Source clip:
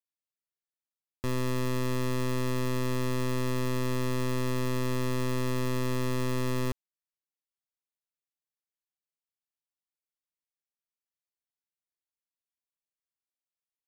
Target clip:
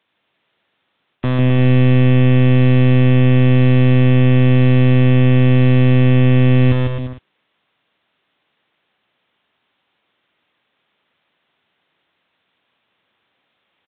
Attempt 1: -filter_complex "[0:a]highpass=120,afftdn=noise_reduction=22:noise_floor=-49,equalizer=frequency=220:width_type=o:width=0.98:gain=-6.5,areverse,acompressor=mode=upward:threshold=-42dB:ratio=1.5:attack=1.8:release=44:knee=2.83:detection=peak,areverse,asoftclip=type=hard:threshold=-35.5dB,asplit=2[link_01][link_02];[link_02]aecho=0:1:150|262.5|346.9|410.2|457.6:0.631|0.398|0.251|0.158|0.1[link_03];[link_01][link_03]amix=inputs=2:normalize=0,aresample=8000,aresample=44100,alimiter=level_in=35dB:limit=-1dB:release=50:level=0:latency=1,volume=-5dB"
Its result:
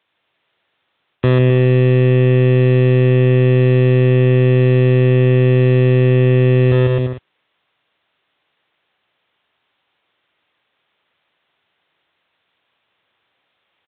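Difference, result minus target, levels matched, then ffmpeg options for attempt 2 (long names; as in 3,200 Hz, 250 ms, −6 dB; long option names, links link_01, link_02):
hard clipping: distortion −4 dB; 250 Hz band −3.0 dB
-filter_complex "[0:a]highpass=120,afftdn=noise_reduction=22:noise_floor=-49,areverse,acompressor=mode=upward:threshold=-42dB:ratio=1.5:attack=1.8:release=44:knee=2.83:detection=peak,areverse,asoftclip=type=hard:threshold=-45dB,asplit=2[link_01][link_02];[link_02]aecho=0:1:150|262.5|346.9|410.2|457.6:0.631|0.398|0.251|0.158|0.1[link_03];[link_01][link_03]amix=inputs=2:normalize=0,aresample=8000,aresample=44100,alimiter=level_in=35dB:limit=-1dB:release=50:level=0:latency=1,volume=-5dB"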